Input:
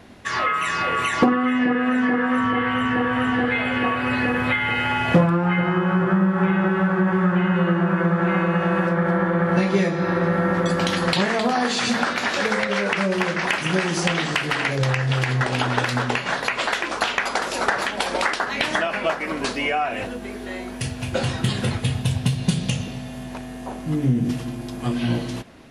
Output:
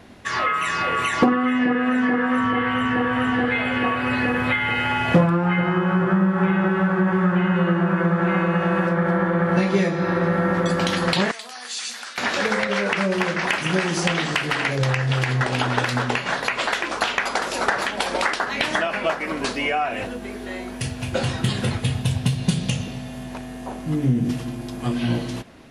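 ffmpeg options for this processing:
-filter_complex "[0:a]asettb=1/sr,asplit=3[s0][s1][s2];[s0]atrim=end=11.314[s3];[s1]atrim=start=11.31:end=12.18,asetpts=PTS-STARTPTS,afade=t=in:d=0.004:c=qsin,afade=t=out:st=0.866:d=0.004:c=qsin,aderivative[s4];[s2]atrim=start=12.176[s5];[s3][s4]acrossfade=d=0.004:c1=hsin:c2=qsin[s6];[s6][s5]acrossfade=d=0.004:c1=qsin:c2=hsin"

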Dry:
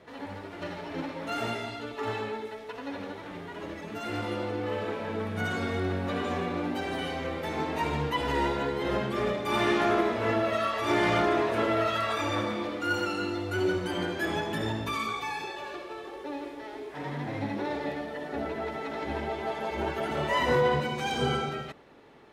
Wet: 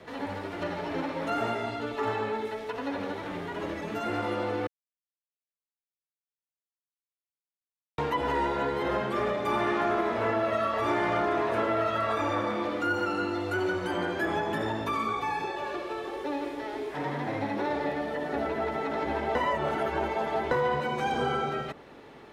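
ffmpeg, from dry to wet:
-filter_complex "[0:a]asplit=5[s0][s1][s2][s3][s4];[s0]atrim=end=4.67,asetpts=PTS-STARTPTS,afade=t=out:st=4.666:d=0.004:c=hsin[s5];[s1]atrim=start=4.67:end=7.98,asetpts=PTS-STARTPTS,volume=0[s6];[s2]atrim=start=7.98:end=19.352,asetpts=PTS-STARTPTS,afade=t=in:d=0.004:c=hsin[s7];[s3]atrim=start=19.348:end=20.512,asetpts=PTS-STARTPTS,areverse[s8];[s4]atrim=start=20.508[s9];[s5][s6][s7]concat=n=3:v=0:a=1[s10];[s10][s8]acrossfade=d=0.004:c1=hsin:c2=hsin[s11];[s11][s9]acrossfade=d=0.004:c1=hsin:c2=hsin,acrossover=split=270|670|1700[s12][s13][s14][s15];[s12]acompressor=threshold=0.00562:ratio=4[s16];[s13]acompressor=threshold=0.0126:ratio=4[s17];[s14]acompressor=threshold=0.02:ratio=4[s18];[s15]acompressor=threshold=0.00282:ratio=4[s19];[s16][s17][s18][s19]amix=inputs=4:normalize=0,volume=1.88"

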